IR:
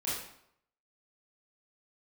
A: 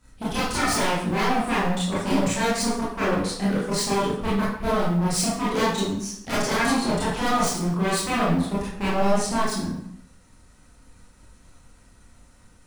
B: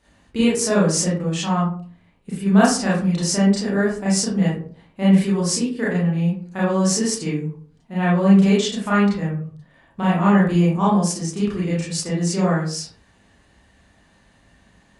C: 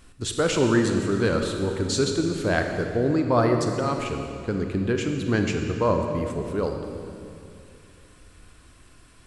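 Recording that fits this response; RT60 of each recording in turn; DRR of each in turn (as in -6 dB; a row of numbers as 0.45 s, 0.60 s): A; 0.70 s, 0.45 s, 2.6 s; -9.0 dB, -8.0 dB, 3.5 dB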